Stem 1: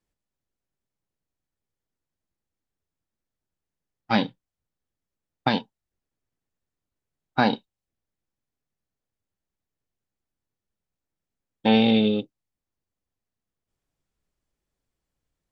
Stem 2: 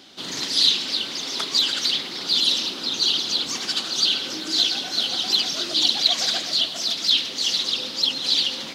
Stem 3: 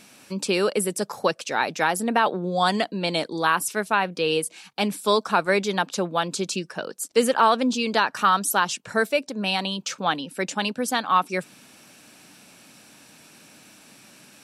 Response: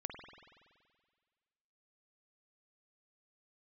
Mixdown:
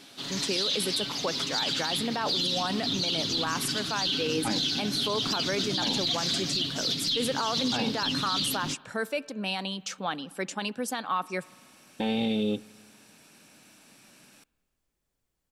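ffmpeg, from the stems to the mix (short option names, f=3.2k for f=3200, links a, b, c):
-filter_complex "[0:a]alimiter=limit=-18dB:level=0:latency=1,highshelf=f=8.8k:g=6.5,adelay=350,volume=0dB,asplit=2[a][b];[b]volume=-21.5dB[c];[1:a]asubboost=boost=12:cutoff=200,aecho=1:1:7.2:0.67,volume=-6.5dB,asplit=2[d][e];[e]volume=-19dB[f];[2:a]volume=-6.5dB,asplit=2[g][h];[h]volume=-17.5dB[i];[3:a]atrim=start_sample=2205[j];[c][f][i]amix=inputs=3:normalize=0[k];[k][j]afir=irnorm=-1:irlink=0[l];[a][d][g][l]amix=inputs=4:normalize=0,alimiter=limit=-19dB:level=0:latency=1:release=18"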